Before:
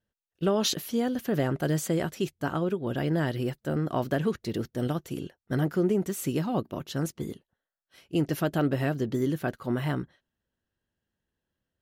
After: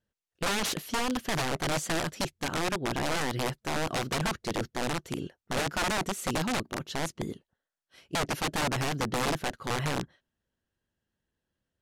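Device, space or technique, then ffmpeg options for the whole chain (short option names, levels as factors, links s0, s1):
overflowing digital effects unit: -af "aeval=exprs='(mod(14.1*val(0)+1,2)-1)/14.1':c=same,lowpass=10000"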